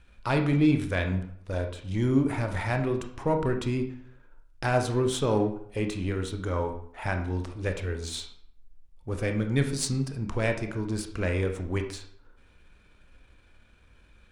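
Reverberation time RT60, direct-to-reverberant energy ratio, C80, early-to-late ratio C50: 0.65 s, 5.0 dB, 12.5 dB, 8.5 dB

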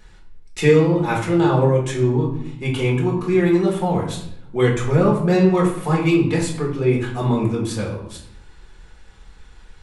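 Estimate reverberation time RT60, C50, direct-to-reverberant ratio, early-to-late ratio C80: 0.75 s, 6.0 dB, −3.5 dB, 9.0 dB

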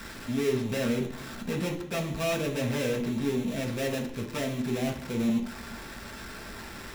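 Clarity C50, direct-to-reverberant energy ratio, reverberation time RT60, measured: 9.0 dB, 0.5 dB, 0.65 s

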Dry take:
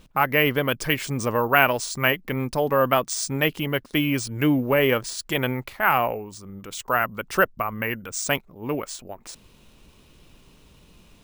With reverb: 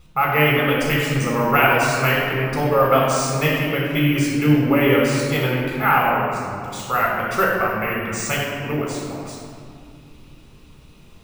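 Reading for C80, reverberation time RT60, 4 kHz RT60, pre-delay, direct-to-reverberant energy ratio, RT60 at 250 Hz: 1.5 dB, 2.3 s, 1.3 s, 13 ms, −3.5 dB, 3.5 s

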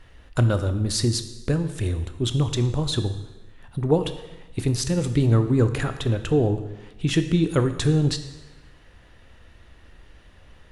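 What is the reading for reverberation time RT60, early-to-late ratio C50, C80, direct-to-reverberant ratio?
1.1 s, 11.0 dB, 12.5 dB, 8.5 dB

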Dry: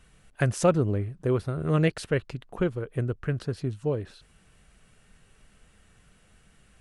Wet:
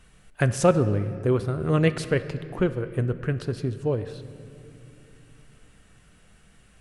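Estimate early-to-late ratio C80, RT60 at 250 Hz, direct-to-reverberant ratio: 13.5 dB, 4.0 s, 11.5 dB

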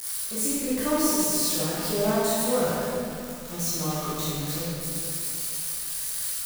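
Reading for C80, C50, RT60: −2.0 dB, −4.0 dB, 2.6 s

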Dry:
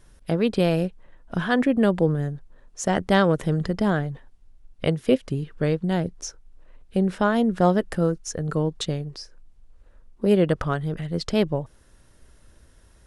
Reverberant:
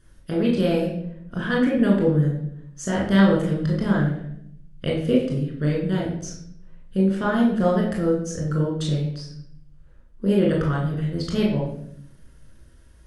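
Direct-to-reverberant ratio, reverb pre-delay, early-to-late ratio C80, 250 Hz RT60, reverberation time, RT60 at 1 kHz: −3.5 dB, 21 ms, 7.0 dB, 1.1 s, 0.70 s, 0.60 s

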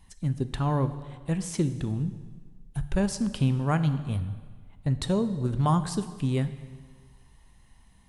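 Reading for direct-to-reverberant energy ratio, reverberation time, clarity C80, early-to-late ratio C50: 11.0 dB, 1.6 s, 14.0 dB, 12.5 dB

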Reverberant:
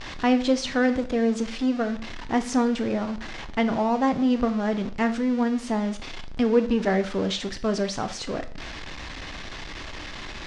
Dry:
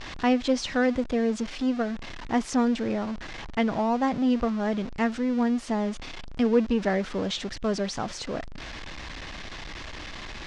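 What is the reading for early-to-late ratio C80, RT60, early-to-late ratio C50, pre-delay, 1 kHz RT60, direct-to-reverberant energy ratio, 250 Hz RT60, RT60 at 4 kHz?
18.0 dB, 0.45 s, 14.5 dB, 7 ms, 0.45 s, 9.0 dB, 0.40 s, 0.40 s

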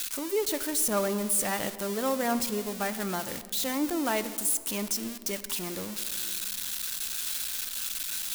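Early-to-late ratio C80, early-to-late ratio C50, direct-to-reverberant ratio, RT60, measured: 14.5 dB, 13.5 dB, 12.0 dB, 2.1 s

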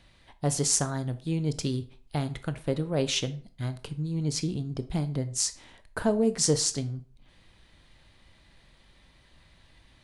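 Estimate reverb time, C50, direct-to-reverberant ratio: 0.40 s, 16.0 dB, 11.0 dB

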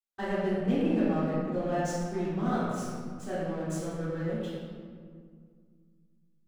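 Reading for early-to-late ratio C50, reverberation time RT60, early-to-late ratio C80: −3.0 dB, 2.0 s, −0.5 dB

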